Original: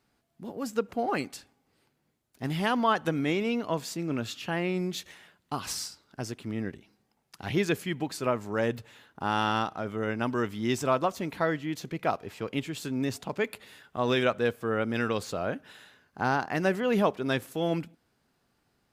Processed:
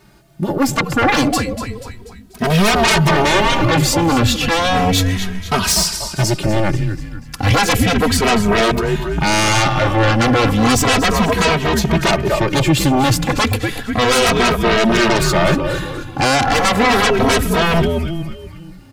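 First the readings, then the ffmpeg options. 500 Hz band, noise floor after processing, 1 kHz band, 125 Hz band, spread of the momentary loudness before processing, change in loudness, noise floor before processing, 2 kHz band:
+12.5 dB, -37 dBFS, +15.0 dB, +18.5 dB, 12 LU, +15.0 dB, -74 dBFS, +17.0 dB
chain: -filter_complex "[0:a]lowshelf=f=240:g=6.5,asplit=2[a][b];[b]asplit=5[c][d][e][f][g];[c]adelay=243,afreqshift=-88,volume=-12dB[h];[d]adelay=486,afreqshift=-176,volume=-18.7dB[i];[e]adelay=729,afreqshift=-264,volume=-25.5dB[j];[f]adelay=972,afreqshift=-352,volume=-32.2dB[k];[g]adelay=1215,afreqshift=-440,volume=-39dB[l];[h][i][j][k][l]amix=inputs=5:normalize=0[m];[a][m]amix=inputs=2:normalize=0,aeval=exprs='0.266*sin(PI/2*6.31*val(0)/0.266)':c=same,asplit=2[n][o];[o]adelay=2.8,afreqshift=-0.33[p];[n][p]amix=inputs=2:normalize=1,volume=4.5dB"

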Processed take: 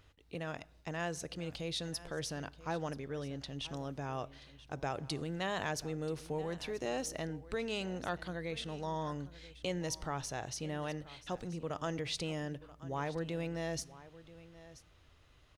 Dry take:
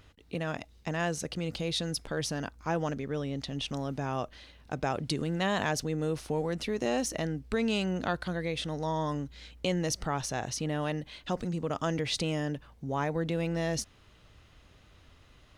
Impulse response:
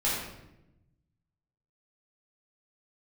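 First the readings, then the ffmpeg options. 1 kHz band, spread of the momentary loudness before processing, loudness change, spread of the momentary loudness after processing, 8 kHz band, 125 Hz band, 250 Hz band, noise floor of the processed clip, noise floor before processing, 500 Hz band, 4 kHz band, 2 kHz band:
-6.0 dB, 7 LU, -7.0 dB, 10 LU, -6.0 dB, -7.5 dB, -8.5 dB, -63 dBFS, -59 dBFS, -6.5 dB, -6.0 dB, -6.0 dB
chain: -filter_complex "[0:a]equalizer=f=220:t=o:w=0.43:g=-7,aecho=1:1:982:0.133,asplit=2[a][b];[1:a]atrim=start_sample=2205[c];[b][c]afir=irnorm=-1:irlink=0,volume=-30.5dB[d];[a][d]amix=inputs=2:normalize=0,volume=-6.5dB"

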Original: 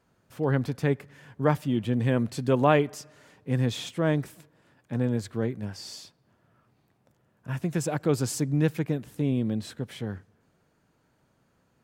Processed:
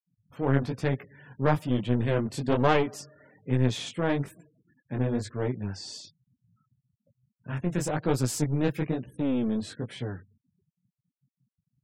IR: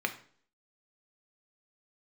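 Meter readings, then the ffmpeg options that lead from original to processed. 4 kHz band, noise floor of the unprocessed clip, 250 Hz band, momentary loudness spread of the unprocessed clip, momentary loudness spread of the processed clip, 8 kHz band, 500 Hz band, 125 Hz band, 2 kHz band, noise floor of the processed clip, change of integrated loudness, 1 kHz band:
+0.5 dB, -69 dBFS, -1.0 dB, 12 LU, 12 LU, 0.0 dB, -1.5 dB, -1.0 dB, 0.0 dB, under -85 dBFS, -1.0 dB, 0.0 dB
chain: -af "flanger=delay=15.5:depth=7.4:speed=1.1,aeval=exprs='clip(val(0),-1,0.0224)':c=same,afftfilt=real='re*gte(hypot(re,im),0.00224)':imag='im*gte(hypot(re,im),0.00224)':win_size=1024:overlap=0.75,volume=3.5dB"

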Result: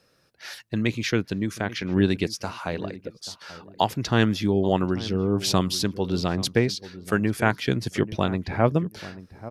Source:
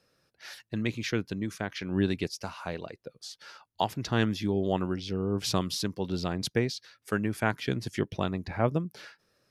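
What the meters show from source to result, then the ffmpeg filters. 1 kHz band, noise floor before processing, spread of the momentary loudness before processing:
+6.0 dB, -75 dBFS, 15 LU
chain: -filter_complex "[0:a]asplit=2[a][b];[b]adelay=837,lowpass=f=980:p=1,volume=-15dB,asplit=2[c][d];[d]adelay=837,lowpass=f=980:p=1,volume=0.2[e];[a][c][e]amix=inputs=3:normalize=0,volume=6dB"

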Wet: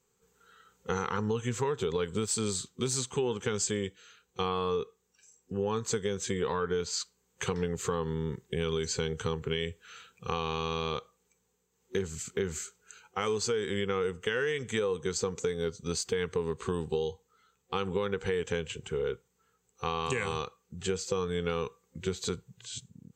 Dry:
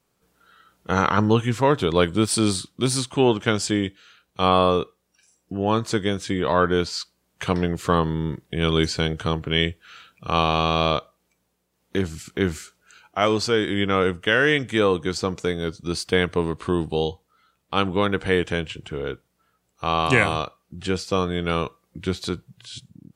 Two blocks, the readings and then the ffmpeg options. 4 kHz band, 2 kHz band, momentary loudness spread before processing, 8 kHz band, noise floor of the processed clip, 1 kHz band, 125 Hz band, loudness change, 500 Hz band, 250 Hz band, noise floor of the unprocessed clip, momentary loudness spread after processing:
-10.5 dB, -12.5 dB, 12 LU, -2.0 dB, -75 dBFS, -12.5 dB, -10.5 dB, -10.0 dB, -8.0 dB, -12.5 dB, -72 dBFS, 8 LU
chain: -af "superequalizer=6b=0.398:7b=2:8b=0.251:15b=2.82:16b=0.355,alimiter=limit=-9dB:level=0:latency=1:release=107,acompressor=threshold=-22dB:ratio=6,volume=-5dB"

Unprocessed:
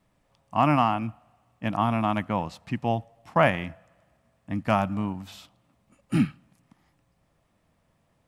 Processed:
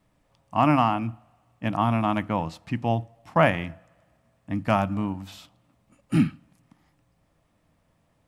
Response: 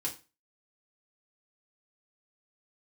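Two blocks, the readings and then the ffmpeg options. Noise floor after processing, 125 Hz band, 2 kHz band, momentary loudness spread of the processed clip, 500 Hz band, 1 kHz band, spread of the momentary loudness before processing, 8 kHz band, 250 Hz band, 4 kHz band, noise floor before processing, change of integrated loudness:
-68 dBFS, +2.0 dB, +0.5 dB, 12 LU, +1.0 dB, +0.5 dB, 12 LU, n/a, +2.0 dB, +0.5 dB, -69 dBFS, +1.0 dB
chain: -filter_complex "[0:a]asplit=2[a][b];[1:a]atrim=start_sample=2205,lowshelf=f=490:g=12[c];[b][c]afir=irnorm=-1:irlink=0,volume=-21.5dB[d];[a][d]amix=inputs=2:normalize=0"

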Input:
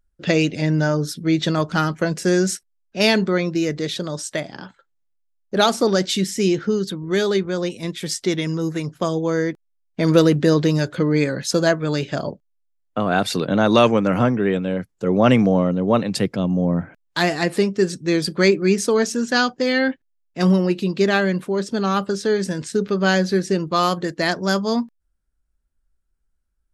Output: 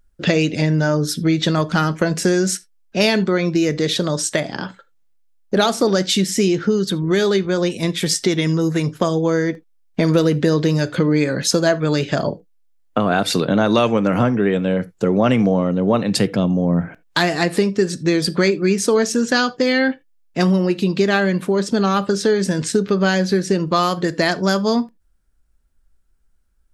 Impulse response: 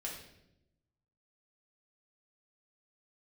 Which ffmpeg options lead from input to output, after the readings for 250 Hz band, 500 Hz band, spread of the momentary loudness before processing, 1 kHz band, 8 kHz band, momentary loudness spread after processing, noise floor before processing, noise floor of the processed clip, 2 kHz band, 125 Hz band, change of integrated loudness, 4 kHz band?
+2.0 dB, +1.5 dB, 9 LU, +1.0 dB, +4.5 dB, 5 LU, -70 dBFS, -58 dBFS, +1.5 dB, +2.5 dB, +2.0 dB, +2.5 dB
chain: -filter_complex "[0:a]acompressor=threshold=-25dB:ratio=3,asplit=2[a][b];[1:a]atrim=start_sample=2205,atrim=end_sample=3969[c];[b][c]afir=irnorm=-1:irlink=0,volume=-12dB[d];[a][d]amix=inputs=2:normalize=0,volume=8dB"

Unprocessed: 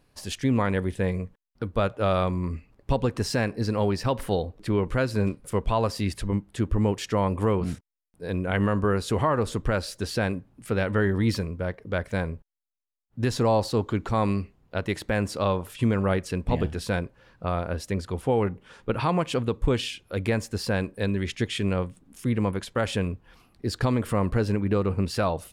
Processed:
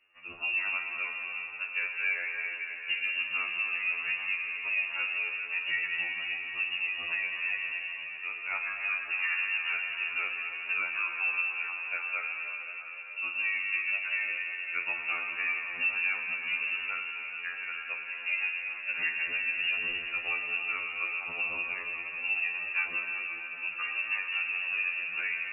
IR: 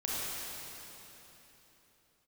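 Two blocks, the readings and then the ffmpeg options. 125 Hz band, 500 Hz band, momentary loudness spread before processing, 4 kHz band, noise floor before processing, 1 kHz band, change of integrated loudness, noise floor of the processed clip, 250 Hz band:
under -40 dB, -27.5 dB, 8 LU, -1.5 dB, -65 dBFS, -13.0 dB, -3.5 dB, -41 dBFS, under -30 dB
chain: -filter_complex "[0:a]highpass=73,aemphasis=mode=reproduction:type=50fm,bandreject=f=265.1:t=h:w=4,bandreject=f=530.2:t=h:w=4,bandreject=f=795.3:t=h:w=4,acompressor=threshold=-29dB:ratio=3,asplit=2[a][b];[1:a]atrim=start_sample=2205,asetrate=25137,aresample=44100,adelay=47[c];[b][c]afir=irnorm=-1:irlink=0,volume=-11dB[d];[a][d]amix=inputs=2:normalize=0,lowpass=f=2.5k:t=q:w=0.5098,lowpass=f=2.5k:t=q:w=0.6013,lowpass=f=2.5k:t=q:w=0.9,lowpass=f=2.5k:t=q:w=2.563,afreqshift=-2900,afftfilt=real='re*2*eq(mod(b,4),0)':imag='im*2*eq(mod(b,4),0)':win_size=2048:overlap=0.75"

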